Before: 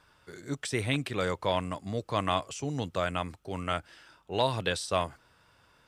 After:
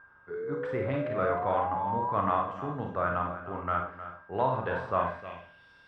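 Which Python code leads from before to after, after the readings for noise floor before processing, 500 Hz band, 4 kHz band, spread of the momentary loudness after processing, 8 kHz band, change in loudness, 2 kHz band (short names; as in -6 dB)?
-65 dBFS, +1.5 dB, under -15 dB, 11 LU, under -30 dB, +1.0 dB, -1.0 dB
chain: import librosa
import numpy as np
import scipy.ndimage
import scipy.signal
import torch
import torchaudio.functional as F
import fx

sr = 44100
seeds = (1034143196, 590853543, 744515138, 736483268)

p1 = x + 10.0 ** (-51.0 / 20.0) * np.sin(2.0 * np.pi * 1600.0 * np.arange(len(x)) / sr)
p2 = fx.sample_hold(p1, sr, seeds[0], rate_hz=7000.0, jitter_pct=0)
p3 = p1 + (p2 * librosa.db_to_amplitude(-11.0))
p4 = fx.rev_schroeder(p3, sr, rt60_s=0.44, comb_ms=31, drr_db=1.5)
p5 = fx.spec_paint(p4, sr, seeds[1], shape='rise', start_s=0.3, length_s=1.83, low_hz=420.0, high_hz=1000.0, level_db=-30.0)
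p6 = p5 + fx.echo_single(p5, sr, ms=310, db=-12.5, dry=0)
p7 = fx.filter_sweep_lowpass(p6, sr, from_hz=1300.0, to_hz=4000.0, start_s=4.97, end_s=5.71, q=2.3)
y = p7 * librosa.db_to_amplitude(-6.0)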